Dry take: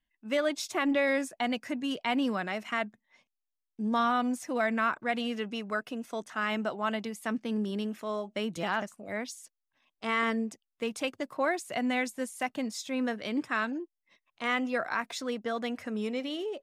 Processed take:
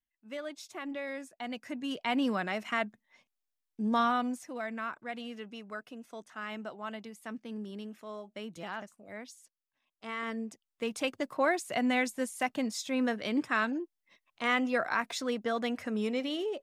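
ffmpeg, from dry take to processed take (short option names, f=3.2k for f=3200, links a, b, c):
-af "volume=10dB,afade=t=in:st=1.32:d=0.99:silence=0.266073,afade=t=out:st=4:d=0.53:silence=0.354813,afade=t=in:st=10.2:d=0.98:silence=0.316228"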